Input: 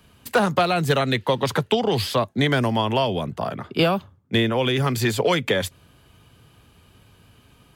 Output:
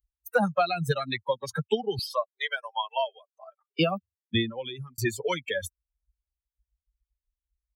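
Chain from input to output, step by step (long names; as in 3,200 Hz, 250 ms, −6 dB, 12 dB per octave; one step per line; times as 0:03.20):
spectral dynamics exaggerated over time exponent 3
0:01.99–0:03.79: linear-phase brick-wall high-pass 420 Hz
0:04.40–0:04.98: fade out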